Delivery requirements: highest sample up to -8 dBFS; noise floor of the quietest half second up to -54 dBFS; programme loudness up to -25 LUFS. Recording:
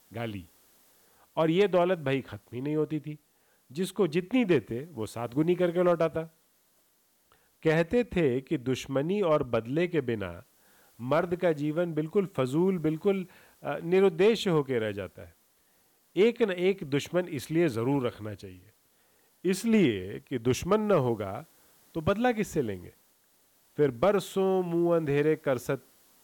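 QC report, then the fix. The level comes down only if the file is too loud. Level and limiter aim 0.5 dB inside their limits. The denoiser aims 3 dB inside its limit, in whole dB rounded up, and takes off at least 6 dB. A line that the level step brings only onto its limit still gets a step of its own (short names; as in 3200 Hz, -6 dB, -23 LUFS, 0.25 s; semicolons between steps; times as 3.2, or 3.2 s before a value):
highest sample -15.5 dBFS: OK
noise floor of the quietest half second -68 dBFS: OK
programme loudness -28.0 LUFS: OK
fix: none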